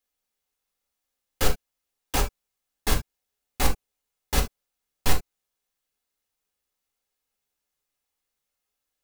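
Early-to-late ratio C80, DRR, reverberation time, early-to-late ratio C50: 32.5 dB, 1.0 dB, not exponential, 12.0 dB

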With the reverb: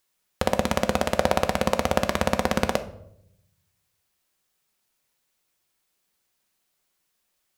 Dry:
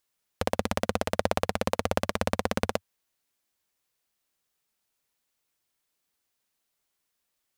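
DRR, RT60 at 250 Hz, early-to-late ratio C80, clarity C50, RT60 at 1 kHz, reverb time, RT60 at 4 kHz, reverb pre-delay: 8.0 dB, 1.1 s, 17.5 dB, 14.0 dB, 0.60 s, 0.75 s, 0.50 s, 5 ms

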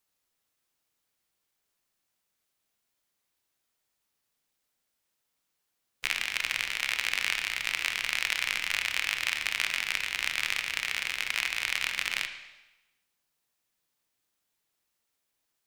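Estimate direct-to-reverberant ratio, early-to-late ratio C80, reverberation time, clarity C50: 6.5 dB, 11.0 dB, 1.0 s, 9.0 dB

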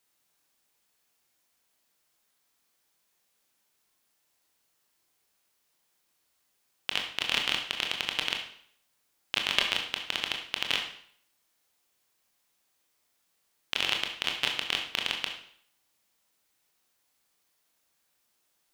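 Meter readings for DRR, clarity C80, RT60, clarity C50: 2.0 dB, 9.5 dB, 0.60 s, 6.0 dB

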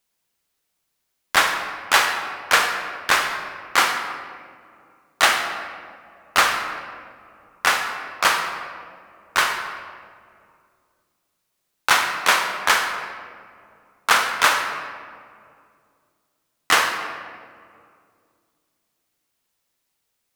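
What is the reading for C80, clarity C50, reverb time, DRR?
7.0 dB, 5.5 dB, 2.3 s, 5.0 dB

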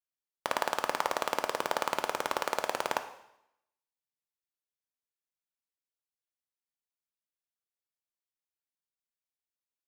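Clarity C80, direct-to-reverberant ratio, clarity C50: 14.0 dB, 8.0 dB, 11.5 dB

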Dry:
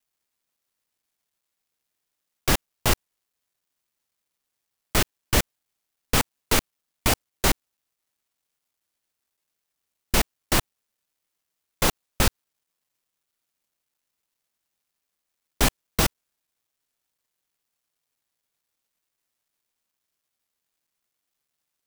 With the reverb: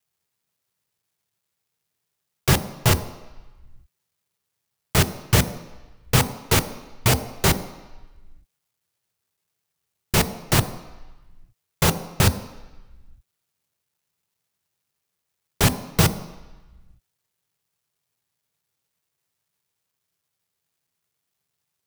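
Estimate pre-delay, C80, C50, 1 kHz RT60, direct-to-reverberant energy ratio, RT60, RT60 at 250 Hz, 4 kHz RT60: 3 ms, 15.0 dB, 13.5 dB, 1.2 s, 10.0 dB, 1.1 s, 0.85 s, 1.1 s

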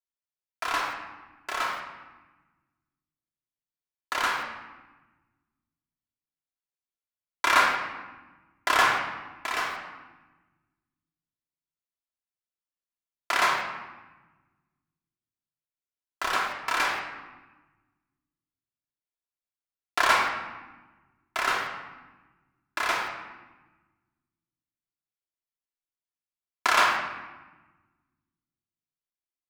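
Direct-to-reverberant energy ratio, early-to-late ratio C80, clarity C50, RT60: -2.5 dB, 5.5 dB, 3.0 dB, 1.2 s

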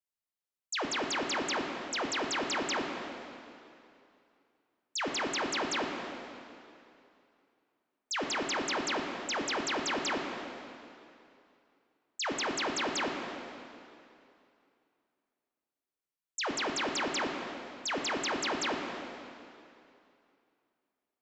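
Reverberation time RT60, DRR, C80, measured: 2.6 s, 1.0 dB, 3.5 dB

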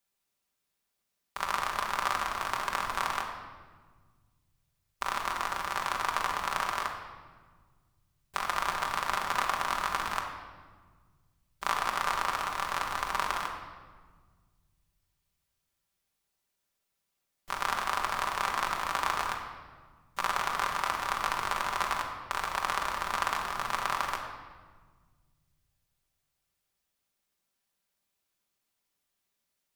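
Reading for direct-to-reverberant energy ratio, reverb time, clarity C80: 0.0 dB, 1.5 s, 7.0 dB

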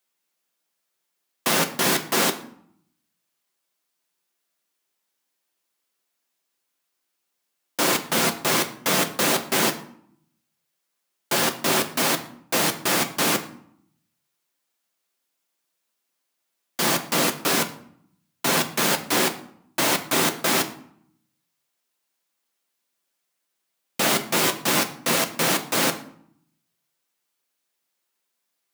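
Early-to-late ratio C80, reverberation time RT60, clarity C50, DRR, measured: 16.5 dB, 0.65 s, 13.5 dB, 5.0 dB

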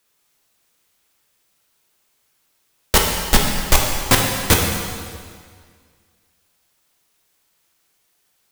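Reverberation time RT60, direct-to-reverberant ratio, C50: 1.9 s, 0.0 dB, 2.5 dB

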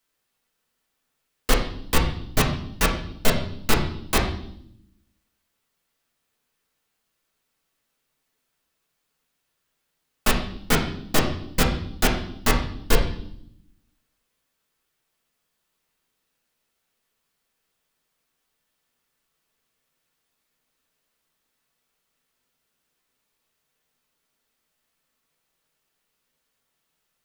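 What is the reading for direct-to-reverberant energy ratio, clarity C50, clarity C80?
-3.0 dB, 7.0 dB, 10.5 dB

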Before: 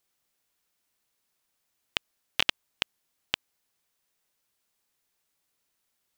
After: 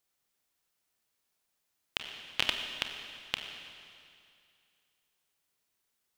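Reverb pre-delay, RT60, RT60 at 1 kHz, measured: 29 ms, 2.4 s, 2.4 s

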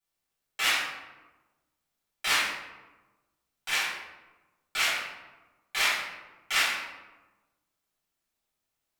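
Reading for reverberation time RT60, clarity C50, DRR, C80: 1.2 s, 0.5 dB, -13.5 dB, 3.5 dB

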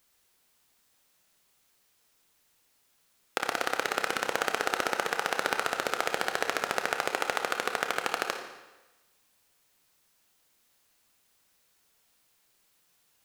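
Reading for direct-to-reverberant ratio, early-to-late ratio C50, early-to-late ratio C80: 4.0 dB, 6.0 dB, 8.0 dB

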